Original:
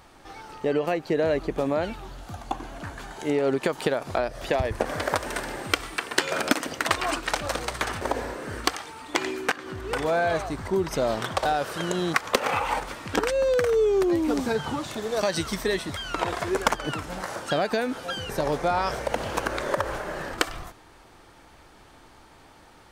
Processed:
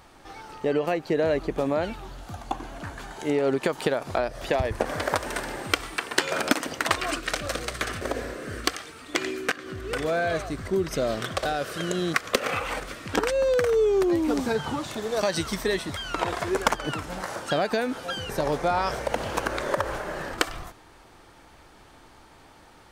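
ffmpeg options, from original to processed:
ffmpeg -i in.wav -filter_complex "[0:a]asettb=1/sr,asplit=3[link_01][link_02][link_03];[link_01]atrim=end=6.994[link_04];[link_02]atrim=start=6.99:end=13.09,asetpts=PTS-STARTPTS,afade=type=in:duration=0.004:curve=qsin,afade=type=out:start_time=6.096:duration=0.004:curve=qsin,equalizer=frequency=890:width_type=o:width=0.31:gain=-15[link_05];[link_03]atrim=start=13.086[link_06];[link_04][link_05]acrossfade=duration=0.004:curve1=hsin:curve2=qsin[link_07];[link_07][link_06]acrossfade=duration=0.004:curve1=qsin:curve2=hsin" out.wav

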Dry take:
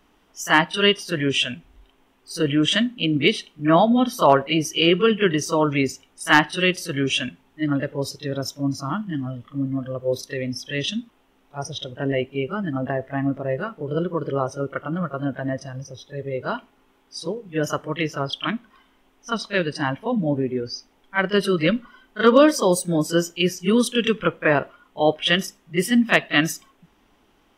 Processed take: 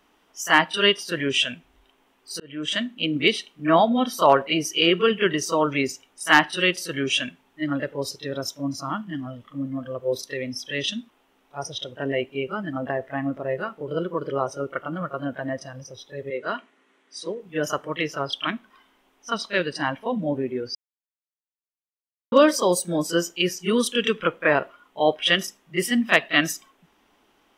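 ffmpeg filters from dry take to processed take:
ffmpeg -i in.wav -filter_complex "[0:a]asettb=1/sr,asplit=3[link_01][link_02][link_03];[link_01]atrim=end=16.304[link_04];[link_02]atrim=start=16.3:end=17.4,asetpts=PTS-STARTPTS,afade=type=in:duration=0.004:curve=qsin,afade=type=out:start_time=1.096:duration=0.004:curve=qsin,highpass=frequency=180:width=0.5412,highpass=frequency=180:width=1.3066,equalizer=frequency=850:width_type=q:width=4:gain=-7,equalizer=frequency=1900:width_type=q:width=4:gain=7,equalizer=frequency=5000:width_type=q:width=4:gain=-5,lowpass=frequency=9600:width=0.5412,lowpass=frequency=9600:width=1.3066[link_05];[link_03]atrim=start=17.396[link_06];[link_04][link_05]acrossfade=duration=0.004:curve1=hsin:curve2=qsin[link_07];[link_07][link_06]acrossfade=duration=0.004:curve1=qsin:curve2=hsin,asplit=4[link_08][link_09][link_10][link_11];[link_08]atrim=end=2.4,asetpts=PTS-STARTPTS,afade=type=out:start_time=2.396:duration=0.004:curve=hsin[link_12];[link_09]atrim=start=2.4:end=20.75,asetpts=PTS-STARTPTS,afade=type=in:duration=0.87:curve=qsin,afade=type=out:start_time=18.346:duration=0.004:curve=hsin[link_13];[link_10]atrim=start=20.75:end=22.32,asetpts=PTS-STARTPTS,volume=0[link_14];[link_11]atrim=start=22.32,asetpts=PTS-STARTPTS,afade=type=in:duration=0.004:curve=hsin[link_15];[link_12][link_13][link_14][link_15]concat=n=4:v=0:a=1,lowshelf=frequency=190:gain=-11.5" out.wav

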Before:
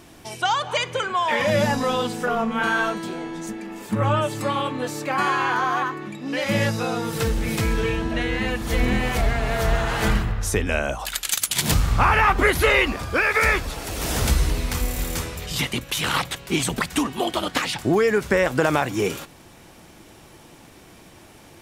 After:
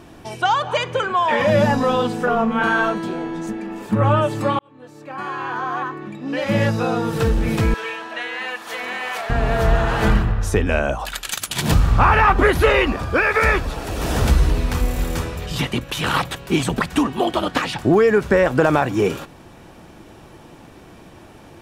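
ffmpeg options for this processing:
ffmpeg -i in.wav -filter_complex "[0:a]asettb=1/sr,asplit=3[link_01][link_02][link_03];[link_01]atrim=end=7.744[link_04];[link_02]atrim=start=7.74:end=9.3,asetpts=PTS-STARTPTS,afade=type=in:duration=0.004:curve=qsin,afade=type=out:start_time=1.556:duration=0.004:curve=qsin,highpass=900[link_05];[link_03]atrim=start=9.296[link_06];[link_04][link_05]acrossfade=duration=0.004:curve1=hsin:curve2=qsin[link_07];[link_07][link_06]acrossfade=duration=0.004:curve1=qsin:curve2=hsin,asettb=1/sr,asplit=3[link_08][link_09][link_10];[link_08]atrim=end=16.064[link_11];[link_09]atrim=start=16.06:end=16.6,asetpts=PTS-STARTPTS,afade=type=in:duration=0.004:curve=qsin,afade=type=out:start_time=0.536:duration=0.004:curve=qsin,highshelf=frequency=9600:gain=6[link_12];[link_10]atrim=start=16.596[link_13];[link_11][link_12]acrossfade=duration=0.004:curve1=hsin:curve2=qsin[link_14];[link_14][link_13]acrossfade=duration=0.004:curve1=qsin:curve2=hsin,asplit=2[link_15][link_16];[link_15]atrim=end=4.59,asetpts=PTS-STARTPTS,afade=type=out:start_time=4.586:duration=0.004:curve=hsin[link_17];[link_16]atrim=start=4.59,asetpts=PTS-STARTPTS,afade=type=in:duration=2.27[link_18];[link_17][link_18]concat=n=2:v=0:a=1,highshelf=frequency=3300:gain=-11.5,bandreject=frequency=2100:width=13,acontrast=32" out.wav

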